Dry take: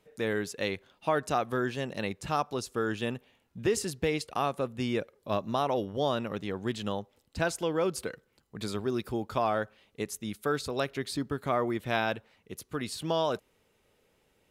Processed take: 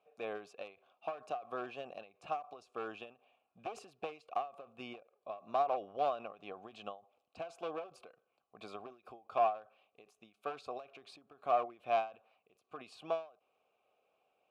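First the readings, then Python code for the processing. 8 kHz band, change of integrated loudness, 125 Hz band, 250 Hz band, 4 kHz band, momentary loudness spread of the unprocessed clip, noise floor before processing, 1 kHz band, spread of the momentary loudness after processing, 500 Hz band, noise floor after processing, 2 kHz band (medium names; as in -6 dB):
under -20 dB, -8.0 dB, -26.0 dB, -20.0 dB, -16.0 dB, 9 LU, -71 dBFS, -4.0 dB, 18 LU, -9.0 dB, -82 dBFS, -14.5 dB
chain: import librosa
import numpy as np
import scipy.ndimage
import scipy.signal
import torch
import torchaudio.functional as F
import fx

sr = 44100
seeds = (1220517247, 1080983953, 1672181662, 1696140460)

y = np.minimum(x, 2.0 * 10.0 ** (-26.0 / 20.0) - x)
y = fx.vowel_filter(y, sr, vowel='a')
y = fx.end_taper(y, sr, db_per_s=170.0)
y = F.gain(torch.from_numpy(y), 5.5).numpy()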